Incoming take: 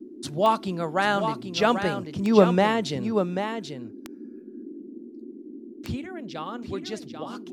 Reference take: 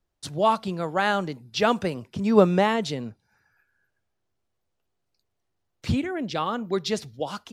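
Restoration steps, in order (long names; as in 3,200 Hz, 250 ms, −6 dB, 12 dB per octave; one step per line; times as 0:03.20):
click removal
noise reduction from a noise print 30 dB
echo removal 788 ms −7.5 dB
level correction +7.5 dB, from 0:03.84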